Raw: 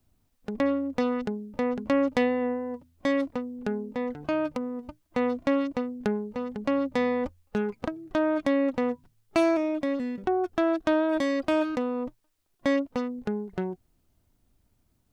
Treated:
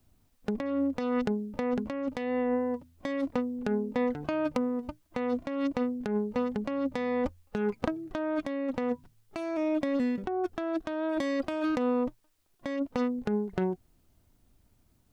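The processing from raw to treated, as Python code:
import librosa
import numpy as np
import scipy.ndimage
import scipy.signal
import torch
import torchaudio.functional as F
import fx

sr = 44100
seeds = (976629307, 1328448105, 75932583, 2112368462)

y = fx.over_compress(x, sr, threshold_db=-29.0, ratio=-1.0)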